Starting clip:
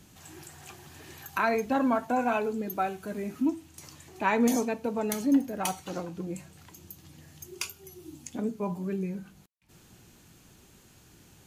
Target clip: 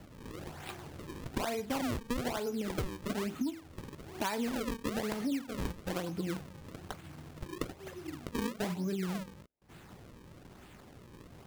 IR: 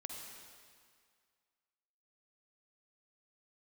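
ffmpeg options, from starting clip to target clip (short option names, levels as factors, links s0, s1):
-af "acrusher=samples=36:mix=1:aa=0.000001:lfo=1:lforange=57.6:lforate=1.1,acompressor=threshold=0.02:ratio=12,volume=1.41"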